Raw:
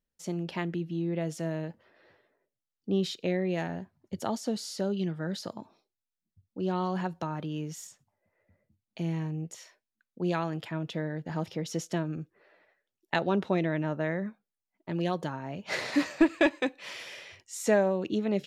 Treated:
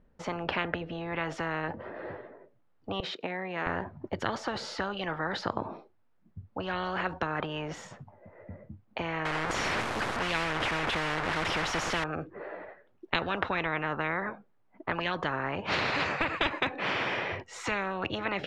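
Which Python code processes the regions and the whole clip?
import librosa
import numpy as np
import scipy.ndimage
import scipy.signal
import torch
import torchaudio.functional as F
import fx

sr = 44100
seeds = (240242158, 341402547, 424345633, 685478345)

y = fx.chain(x, sr, fx.highpass(hz=340.0, slope=12),
    fx.level_steps(step_db=14), at=(3.0, 3.67))
y = fx.chain(y, sr, fx.delta_mod(bps=64000, step_db=-33.5),
    fx.high_shelf(hz=6800.0, db=10.5), at=(9.25, 12.04))
y = scipy.signal.sosfilt(scipy.signal.butter(2, 1200.0, 'lowpass', fs=sr, output='sos'), y)
y = fx.spectral_comp(y, sr, ratio=10.0)
y = y * librosa.db_to_amplitude(3.0)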